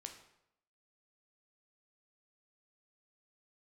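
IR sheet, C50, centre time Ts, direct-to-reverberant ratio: 8.5 dB, 19 ms, 4.0 dB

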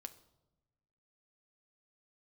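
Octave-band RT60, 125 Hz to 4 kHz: 1.5 s, 1.4 s, 1.1 s, 0.90 s, 0.60 s, 0.65 s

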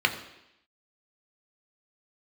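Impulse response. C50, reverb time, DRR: 11.0 dB, 0.85 s, 4.0 dB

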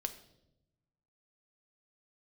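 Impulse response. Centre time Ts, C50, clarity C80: 8 ms, 12.5 dB, 15.0 dB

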